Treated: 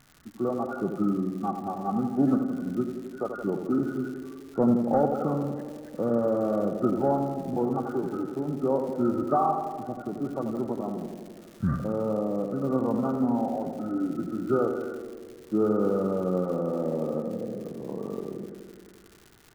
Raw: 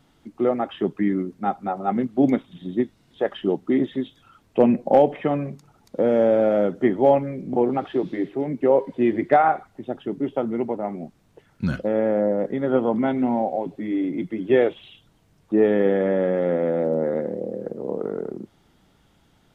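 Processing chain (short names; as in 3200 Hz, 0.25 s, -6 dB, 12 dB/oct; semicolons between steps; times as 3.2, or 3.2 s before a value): nonlinear frequency compression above 1100 Hz 4:1; EQ curve 120 Hz 0 dB, 550 Hz -10 dB, 1400 Hz -4 dB; crackle 220/s -40 dBFS; tape echo 86 ms, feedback 85%, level -6 dB, low-pass 1300 Hz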